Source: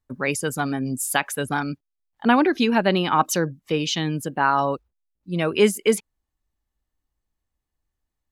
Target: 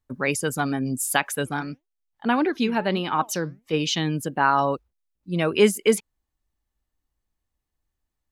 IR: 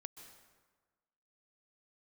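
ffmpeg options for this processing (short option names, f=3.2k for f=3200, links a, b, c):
-filter_complex "[0:a]asplit=3[a][b][c];[a]afade=t=out:st=1.45:d=0.02[d];[b]flanger=delay=2.1:depth=5.1:regen=87:speed=1.6:shape=triangular,afade=t=in:st=1.45:d=0.02,afade=t=out:st=3.72:d=0.02[e];[c]afade=t=in:st=3.72:d=0.02[f];[d][e][f]amix=inputs=3:normalize=0"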